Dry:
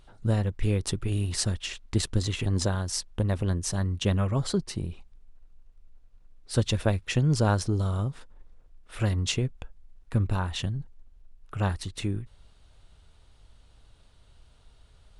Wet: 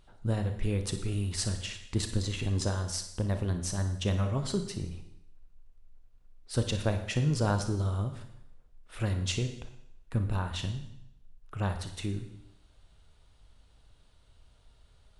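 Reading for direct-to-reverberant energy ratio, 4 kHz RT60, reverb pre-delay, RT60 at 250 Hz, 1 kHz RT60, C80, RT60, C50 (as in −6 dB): 6.5 dB, 0.80 s, 30 ms, 0.75 s, 0.80 s, 11.0 dB, 0.80 s, 8.0 dB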